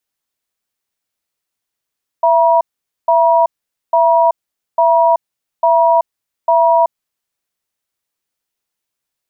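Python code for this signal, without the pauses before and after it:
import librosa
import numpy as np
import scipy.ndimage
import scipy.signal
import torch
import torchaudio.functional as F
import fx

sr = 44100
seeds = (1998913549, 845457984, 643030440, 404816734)

y = fx.cadence(sr, length_s=4.85, low_hz=668.0, high_hz=957.0, on_s=0.38, off_s=0.47, level_db=-10.5)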